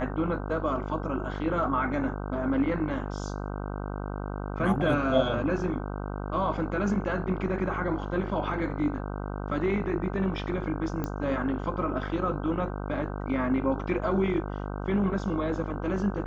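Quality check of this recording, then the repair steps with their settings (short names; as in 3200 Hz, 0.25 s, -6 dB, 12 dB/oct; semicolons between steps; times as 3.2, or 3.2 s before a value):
buzz 50 Hz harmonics 31 -34 dBFS
11.04 pop -18 dBFS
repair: de-click; de-hum 50 Hz, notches 31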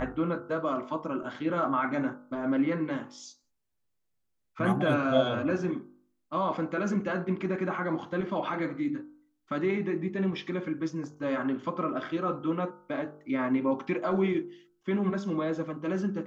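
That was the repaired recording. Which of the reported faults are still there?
none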